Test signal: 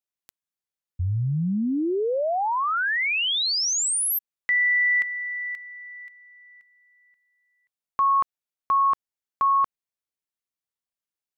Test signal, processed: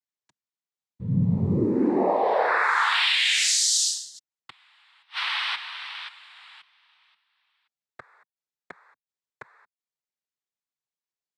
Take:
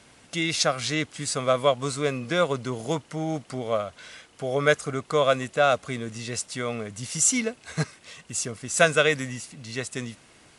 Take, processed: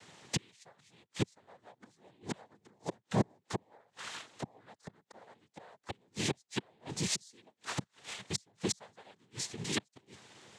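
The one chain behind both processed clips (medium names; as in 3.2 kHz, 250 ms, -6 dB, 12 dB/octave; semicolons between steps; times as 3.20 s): waveshaping leveller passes 1; inverted gate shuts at -18 dBFS, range -39 dB; noise-vocoded speech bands 6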